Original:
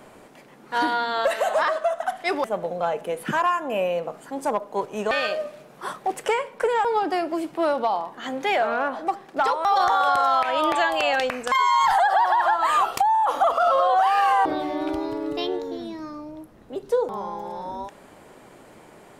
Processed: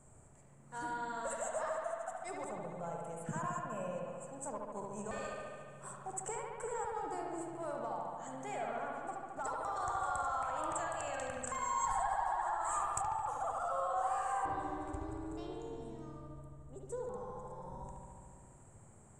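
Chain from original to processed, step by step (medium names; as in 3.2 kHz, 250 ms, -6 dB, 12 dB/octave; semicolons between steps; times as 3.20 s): FFT filter 110 Hz 0 dB, 290 Hz -20 dB, 1.2 kHz -18 dB, 3.4 kHz -29 dB, 5.3 kHz -24 dB, 7.8 kHz +5 dB, 12 kHz -27 dB; on a send: bucket-brigade echo 72 ms, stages 2048, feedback 79%, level -3 dB; on the sum: trim -1.5 dB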